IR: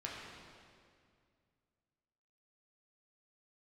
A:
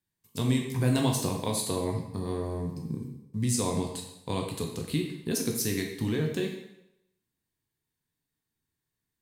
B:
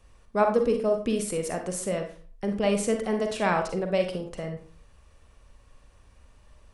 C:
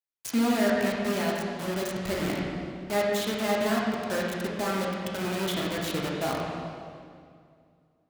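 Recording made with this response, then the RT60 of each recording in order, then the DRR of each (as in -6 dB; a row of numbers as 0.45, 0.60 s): C; 0.85, 0.45, 2.2 s; 1.0, 4.5, -4.5 dB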